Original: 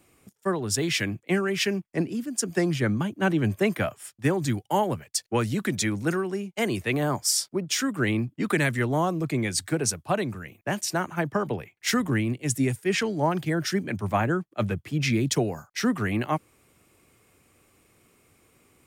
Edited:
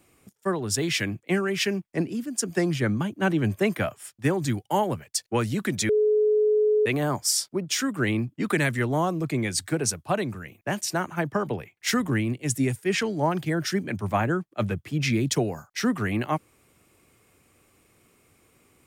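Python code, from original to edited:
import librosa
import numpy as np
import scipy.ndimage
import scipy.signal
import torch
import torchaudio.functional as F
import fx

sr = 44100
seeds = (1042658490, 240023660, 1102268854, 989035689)

y = fx.edit(x, sr, fx.bleep(start_s=5.89, length_s=0.97, hz=425.0, db=-17.5), tone=tone)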